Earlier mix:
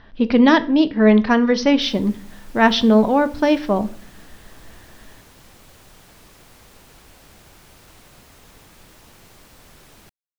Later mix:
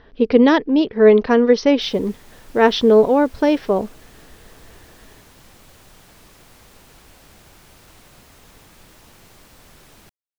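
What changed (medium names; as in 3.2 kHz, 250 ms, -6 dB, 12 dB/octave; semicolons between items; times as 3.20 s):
speech: add peaking EQ 440 Hz +12 dB 0.47 oct; reverb: off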